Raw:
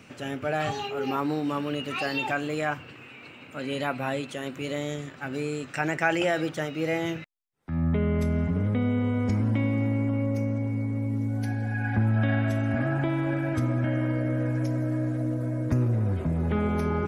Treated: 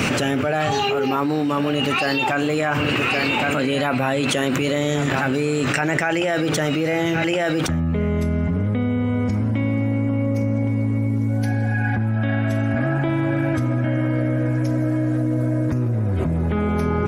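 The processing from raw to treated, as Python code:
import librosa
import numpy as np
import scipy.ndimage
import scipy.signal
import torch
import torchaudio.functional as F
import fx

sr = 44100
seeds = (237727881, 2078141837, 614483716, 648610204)

y = x + 10.0 ** (-17.0 / 20.0) * np.pad(x, (int(1118 * sr / 1000.0), 0))[:len(x)]
y = fx.env_flatten(y, sr, amount_pct=100)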